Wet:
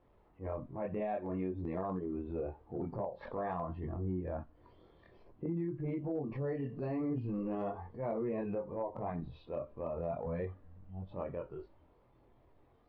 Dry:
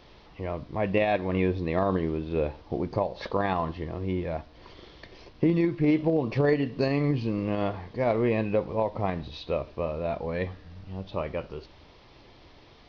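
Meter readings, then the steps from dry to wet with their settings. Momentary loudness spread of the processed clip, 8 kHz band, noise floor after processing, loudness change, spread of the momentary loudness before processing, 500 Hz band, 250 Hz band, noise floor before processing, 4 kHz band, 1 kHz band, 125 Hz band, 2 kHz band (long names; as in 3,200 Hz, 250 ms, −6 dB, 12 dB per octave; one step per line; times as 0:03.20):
7 LU, can't be measured, −67 dBFS, −11.0 dB, 11 LU, −10.5 dB, −10.5 dB, −53 dBFS, below −25 dB, −10.5 dB, −10.0 dB, −18.5 dB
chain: low-pass filter 1,200 Hz 12 dB per octave
multi-voice chorus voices 2, 0.49 Hz, delay 23 ms, depth 1.9 ms
downward compressor 12 to 1, threshold −31 dBFS, peak gain reduction 12.5 dB
noise reduction from a noise print of the clip's start 9 dB
transient designer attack −8 dB, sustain 0 dB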